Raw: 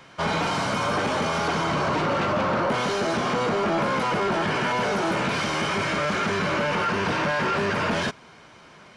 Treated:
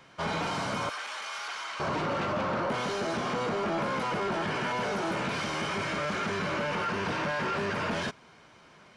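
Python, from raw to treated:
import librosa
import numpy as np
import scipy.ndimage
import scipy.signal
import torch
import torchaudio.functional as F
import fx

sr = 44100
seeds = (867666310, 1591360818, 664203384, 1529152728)

y = fx.highpass(x, sr, hz=1400.0, slope=12, at=(0.89, 1.8))
y = y * librosa.db_to_amplitude(-6.5)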